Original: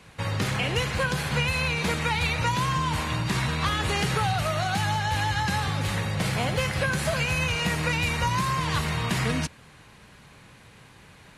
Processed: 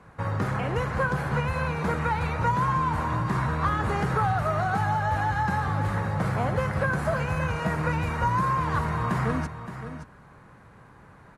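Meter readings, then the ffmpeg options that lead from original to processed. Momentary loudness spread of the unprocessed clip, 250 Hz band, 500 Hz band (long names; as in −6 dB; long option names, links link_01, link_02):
3 LU, +0.5 dB, +1.0 dB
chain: -af "highshelf=frequency=2000:width_type=q:width=1.5:gain=-13,aecho=1:1:570:0.282"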